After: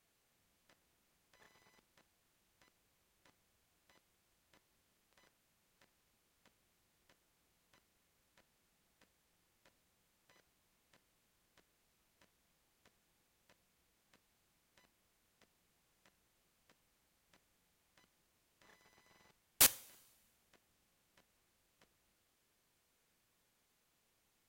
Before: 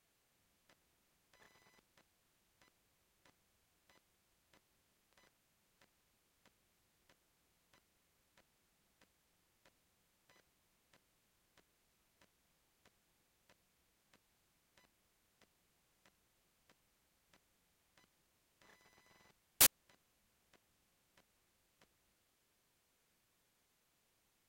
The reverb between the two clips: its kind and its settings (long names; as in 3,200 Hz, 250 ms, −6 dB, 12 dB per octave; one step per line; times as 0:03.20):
coupled-rooms reverb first 0.42 s, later 1.5 s, from −15 dB, DRR 15.5 dB